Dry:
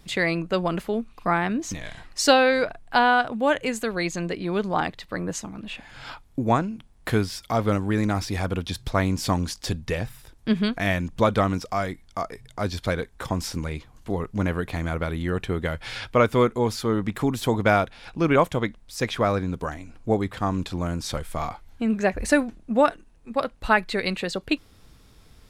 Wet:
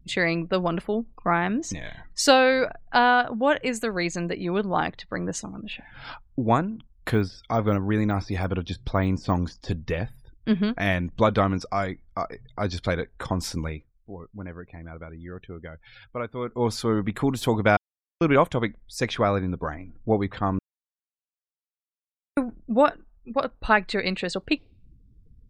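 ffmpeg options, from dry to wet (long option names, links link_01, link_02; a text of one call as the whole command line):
ffmpeg -i in.wav -filter_complex "[0:a]asettb=1/sr,asplit=3[link_01][link_02][link_03];[link_01]atrim=end=7.104[link_04];[link_02]atrim=start=7.1:end=10.73,asetpts=PTS-STARTPTS,afade=type=in:duration=0.004:curve=qsin,afade=type=out:start_time=3.626:duration=0.004:curve=qsin,deesser=0.95[link_05];[link_03]atrim=start=10.726[link_06];[link_04][link_05]acrossfade=duration=0.004:curve1=hsin:curve2=qsin[link_07];[link_07][link_06]acrossfade=duration=0.004:curve1=qsin:curve2=hsin,asplit=7[link_08][link_09][link_10][link_11][link_12][link_13][link_14];[link_08]atrim=end=13.96,asetpts=PTS-STARTPTS,afade=type=out:start_time=13.68:duration=0.28:curve=qua:silence=0.237137[link_15];[link_09]atrim=start=13.96:end=16.37,asetpts=PTS-STARTPTS,volume=-12.5dB[link_16];[link_10]atrim=start=16.37:end=17.77,asetpts=PTS-STARTPTS,afade=type=in:duration=0.28:curve=qua:silence=0.237137,afade=type=out:start_time=1.396:duration=0.004:curve=hsin[link_17];[link_11]atrim=start=17.77:end=18.21,asetpts=PTS-STARTPTS,volume=0[link_18];[link_12]atrim=start=18.21:end=20.59,asetpts=PTS-STARTPTS,afade=type=in:duration=0.004:curve=hsin,afade=type=out:start_time=2.376:duration=0.004:curve=hsin[link_19];[link_13]atrim=start=20.59:end=22.37,asetpts=PTS-STARTPTS,volume=0[link_20];[link_14]atrim=start=22.37,asetpts=PTS-STARTPTS,afade=type=in:duration=0.004:curve=hsin[link_21];[link_15][link_16][link_17][link_18][link_19][link_20][link_21]concat=n=7:v=0:a=1,afftdn=noise_reduction=35:noise_floor=-47" out.wav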